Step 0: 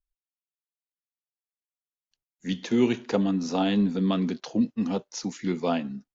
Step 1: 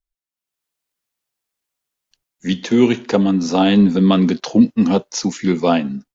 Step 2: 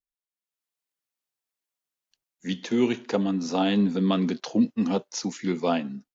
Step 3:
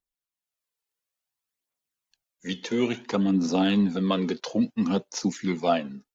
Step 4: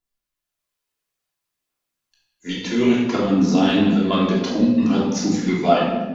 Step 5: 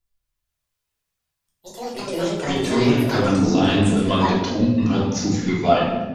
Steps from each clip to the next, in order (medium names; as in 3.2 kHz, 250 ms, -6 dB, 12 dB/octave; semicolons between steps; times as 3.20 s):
level rider gain up to 15 dB
bass shelf 86 Hz -11.5 dB; trim -8.5 dB
phaser 0.58 Hz, delay 2.4 ms, feedback 47%
simulated room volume 740 m³, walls mixed, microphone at 3.1 m
resonant low shelf 140 Hz +10.5 dB, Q 1.5; ever faster or slower copies 209 ms, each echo +6 st, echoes 2, each echo -6 dB